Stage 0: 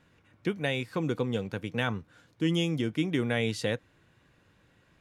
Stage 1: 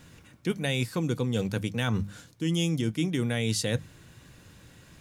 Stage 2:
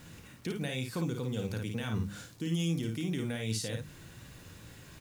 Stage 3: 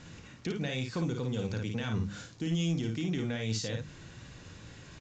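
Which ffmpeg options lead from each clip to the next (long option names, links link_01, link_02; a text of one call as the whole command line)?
ffmpeg -i in.wav -af "bass=frequency=250:gain=7,treble=frequency=4000:gain=13,bandreject=frequency=50:width_type=h:width=6,bandreject=frequency=100:width_type=h:width=6,bandreject=frequency=150:width_type=h:width=6,bandreject=frequency=200:width_type=h:width=6,areverse,acompressor=threshold=-32dB:ratio=6,areverse,volume=7.5dB" out.wav
ffmpeg -i in.wav -filter_complex "[0:a]alimiter=level_in=2dB:limit=-24dB:level=0:latency=1:release=147,volume=-2dB,asplit=2[link_01][link_02];[link_02]aecho=0:1:35|54:0.178|0.596[link_03];[link_01][link_03]amix=inputs=2:normalize=0,acrusher=bits=9:mix=0:aa=0.000001" out.wav
ffmpeg -i in.wav -filter_complex "[0:a]asplit=2[link_01][link_02];[link_02]asoftclip=type=hard:threshold=-30dB,volume=-4dB[link_03];[link_01][link_03]amix=inputs=2:normalize=0,aresample=16000,aresample=44100,volume=-2.5dB" out.wav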